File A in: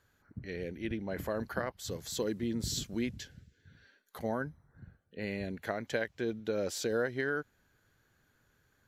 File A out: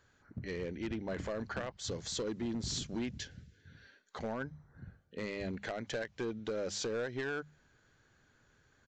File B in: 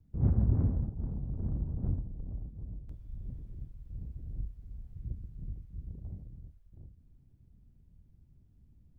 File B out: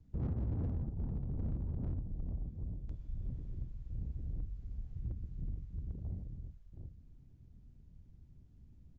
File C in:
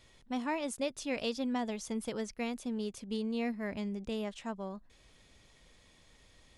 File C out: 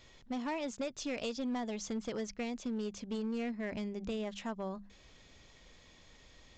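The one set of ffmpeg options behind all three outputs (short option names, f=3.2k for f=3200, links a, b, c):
-af "bandreject=f=50:t=h:w=6,bandreject=f=100:t=h:w=6,bandreject=f=150:t=h:w=6,bandreject=f=200:t=h:w=6,acompressor=threshold=-37dB:ratio=2.5,aresample=16000,asoftclip=type=hard:threshold=-34.5dB,aresample=44100,volume=3dB"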